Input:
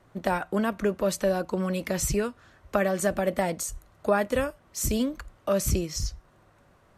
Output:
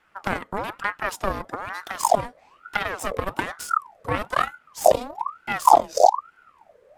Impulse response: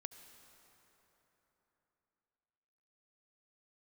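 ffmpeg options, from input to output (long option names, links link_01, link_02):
-af "asubboost=boost=11.5:cutoff=62,aeval=exprs='0.631*(cos(1*acos(clip(val(0)/0.631,-1,1)))-cos(1*PI/2))+0.0631*(cos(3*acos(clip(val(0)/0.631,-1,1)))-cos(3*PI/2))+0.141*(cos(6*acos(clip(val(0)/0.631,-1,1)))-cos(6*PI/2))':channel_layout=same,aeval=exprs='val(0)*sin(2*PI*970*n/s+970*0.5/1.1*sin(2*PI*1.1*n/s))':channel_layout=same,volume=2dB"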